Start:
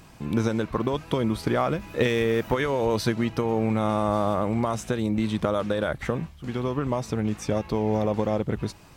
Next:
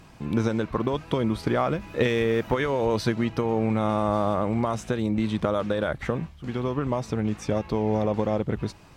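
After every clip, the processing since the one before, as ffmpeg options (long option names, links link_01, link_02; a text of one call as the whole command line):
ffmpeg -i in.wav -af "highshelf=frequency=8100:gain=-9" out.wav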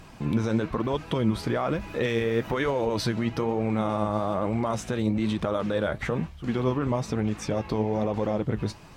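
ffmpeg -i in.wav -af "alimiter=limit=-20dB:level=0:latency=1:release=52,flanger=delay=1.1:depth=9.8:regen=63:speed=1.1:shape=triangular,volume=7dB" out.wav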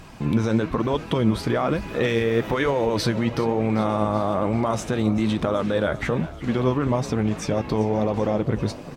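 ffmpeg -i in.wav -filter_complex "[0:a]asplit=7[link_01][link_02][link_03][link_04][link_05][link_06][link_07];[link_02]adelay=388,afreqshift=35,volume=-17dB[link_08];[link_03]adelay=776,afreqshift=70,volume=-21.6dB[link_09];[link_04]adelay=1164,afreqshift=105,volume=-26.2dB[link_10];[link_05]adelay=1552,afreqshift=140,volume=-30.7dB[link_11];[link_06]adelay=1940,afreqshift=175,volume=-35.3dB[link_12];[link_07]adelay=2328,afreqshift=210,volume=-39.9dB[link_13];[link_01][link_08][link_09][link_10][link_11][link_12][link_13]amix=inputs=7:normalize=0,volume=4dB" out.wav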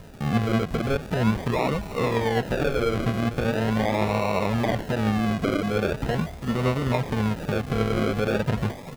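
ffmpeg -i in.wav -filter_complex "[0:a]equalizer=frequency=320:width=4.6:gain=-14.5,acrusher=samples=38:mix=1:aa=0.000001:lfo=1:lforange=22.8:lforate=0.41,acrossover=split=3800[link_01][link_02];[link_02]acompressor=threshold=-43dB:ratio=4:attack=1:release=60[link_03];[link_01][link_03]amix=inputs=2:normalize=0" out.wav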